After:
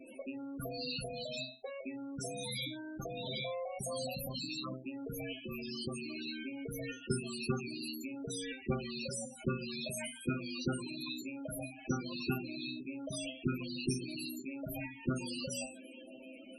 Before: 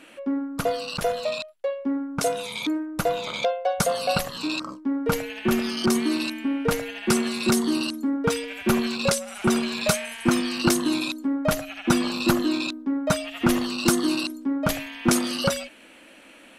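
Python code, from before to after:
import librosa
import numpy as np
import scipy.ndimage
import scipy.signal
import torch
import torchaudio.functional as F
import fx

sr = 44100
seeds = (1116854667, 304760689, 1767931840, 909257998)

y = fx.rattle_buzz(x, sr, strikes_db=-28.0, level_db=-14.0)
y = fx.peak_eq(y, sr, hz=1600.0, db=-13.5, octaves=2.8)
y = fx.level_steps(y, sr, step_db=21)
y = fx.low_shelf(y, sr, hz=140.0, db=-6.0, at=(10.12, 12.37))
y = fx.comb_fb(y, sr, f0_hz=130.0, decay_s=0.28, harmonics='all', damping=0.0, mix_pct=90)
y = fx.spec_topn(y, sr, count=16)
y = scipy.signal.sosfilt(scipy.signal.butter(2, 45.0, 'highpass', fs=sr, output='sos'), y)
y = fx.hum_notches(y, sr, base_hz=60, count=6)
y = fx.spectral_comp(y, sr, ratio=2.0)
y = y * 10.0 ** (4.5 / 20.0)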